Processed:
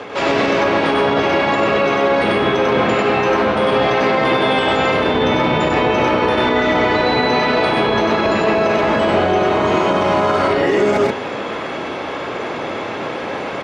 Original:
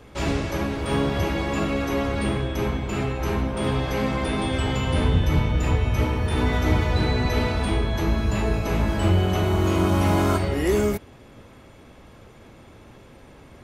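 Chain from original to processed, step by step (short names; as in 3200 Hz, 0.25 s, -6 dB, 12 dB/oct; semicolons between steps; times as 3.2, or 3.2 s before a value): octaver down 1 oct, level +2 dB; HPF 430 Hz 12 dB/oct; high shelf 7500 Hz -6.5 dB; reverse; compressor 12:1, threshold -38 dBFS, peak gain reduction 17 dB; reverse; air absorption 130 m; on a send: loudspeakers at several distances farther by 33 m -1 dB, 44 m -2 dB; on the sum: maximiser +30.5 dB; gain -5.5 dB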